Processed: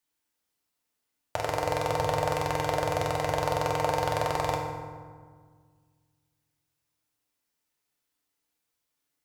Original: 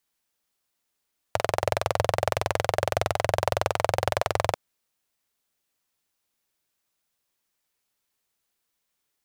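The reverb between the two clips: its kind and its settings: FDN reverb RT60 1.7 s, low-frequency decay 1.45×, high-frequency decay 0.55×, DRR -0.5 dB; trim -5.5 dB

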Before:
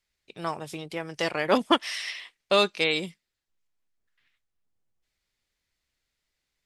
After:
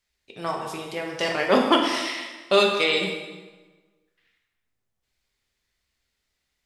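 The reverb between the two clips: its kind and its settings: plate-style reverb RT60 1.3 s, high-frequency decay 0.8×, DRR 0 dB; trim +1 dB

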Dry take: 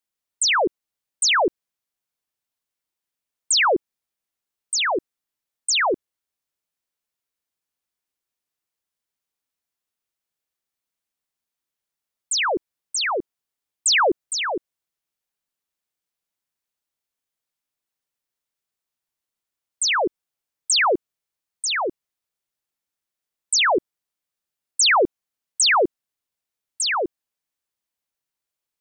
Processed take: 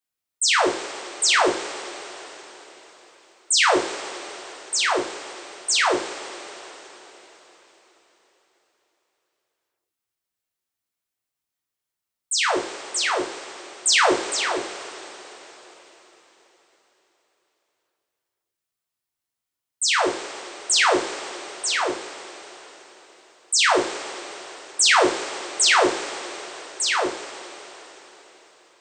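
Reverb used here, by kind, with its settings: two-slope reverb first 0.42 s, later 4.4 s, from -18 dB, DRR -2 dB; trim -3.5 dB

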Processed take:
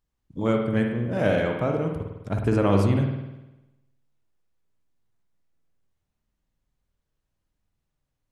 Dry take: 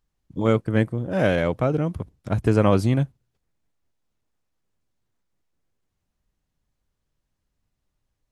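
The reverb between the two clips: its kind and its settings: spring tank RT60 1 s, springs 50 ms, chirp 25 ms, DRR 2 dB; trim -4 dB

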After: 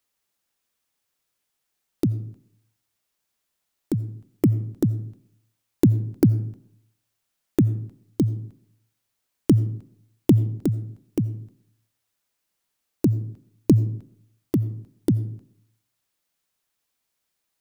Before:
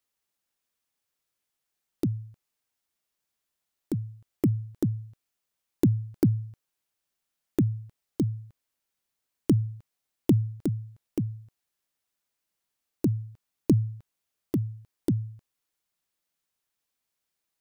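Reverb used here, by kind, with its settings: algorithmic reverb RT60 0.68 s, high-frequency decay 0.5×, pre-delay 45 ms, DRR 17.5 dB; trim +5 dB

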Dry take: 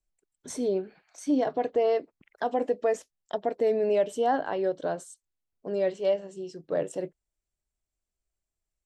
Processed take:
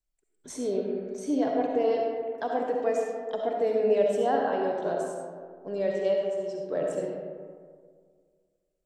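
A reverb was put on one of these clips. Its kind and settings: algorithmic reverb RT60 1.9 s, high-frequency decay 0.4×, pre-delay 25 ms, DRR -0.5 dB; trim -3 dB

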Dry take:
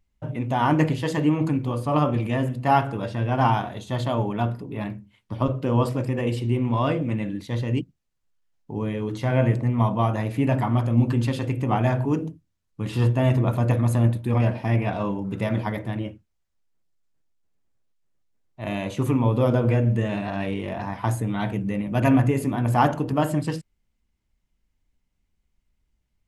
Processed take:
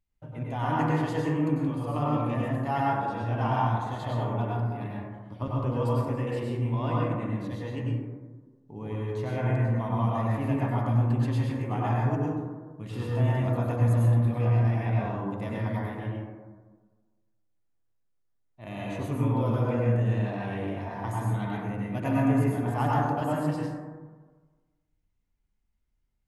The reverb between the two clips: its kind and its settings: plate-style reverb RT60 1.4 s, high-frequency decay 0.3×, pre-delay 85 ms, DRR -5 dB; trim -11.5 dB

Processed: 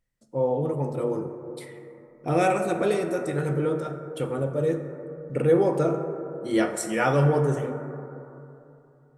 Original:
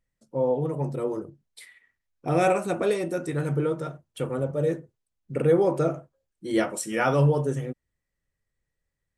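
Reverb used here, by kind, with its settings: plate-style reverb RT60 3 s, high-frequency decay 0.25×, DRR 6 dB

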